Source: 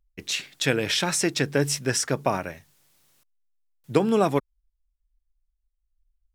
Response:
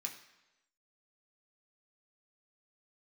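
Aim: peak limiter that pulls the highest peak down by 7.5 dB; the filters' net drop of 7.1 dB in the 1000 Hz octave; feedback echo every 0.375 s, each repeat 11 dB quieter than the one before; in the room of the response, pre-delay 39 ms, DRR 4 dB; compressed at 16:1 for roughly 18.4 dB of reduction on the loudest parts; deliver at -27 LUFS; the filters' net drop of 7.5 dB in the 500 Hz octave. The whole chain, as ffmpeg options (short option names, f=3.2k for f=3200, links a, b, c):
-filter_complex "[0:a]equalizer=f=500:t=o:g=-8,equalizer=f=1k:t=o:g=-6.5,acompressor=threshold=-38dB:ratio=16,alimiter=level_in=8dB:limit=-24dB:level=0:latency=1,volume=-8dB,aecho=1:1:375|750|1125:0.282|0.0789|0.0221,asplit=2[a][b];[1:a]atrim=start_sample=2205,adelay=39[c];[b][c]afir=irnorm=-1:irlink=0,volume=-2.5dB[d];[a][d]amix=inputs=2:normalize=0,volume=15.5dB"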